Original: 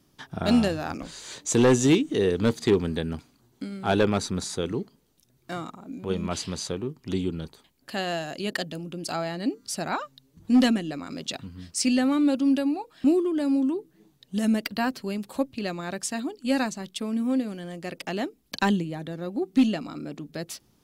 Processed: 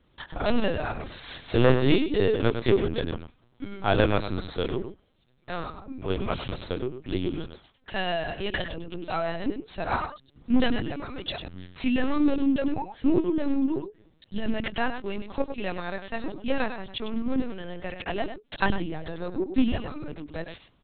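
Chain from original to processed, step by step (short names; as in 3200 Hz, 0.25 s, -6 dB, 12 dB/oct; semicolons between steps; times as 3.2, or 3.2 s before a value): bell 150 Hz -5 dB 2.7 oct; echo 0.103 s -9.5 dB; in parallel at -6 dB: one-sided clip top -33 dBFS; on the sum: LPC vocoder at 8 kHz pitch kept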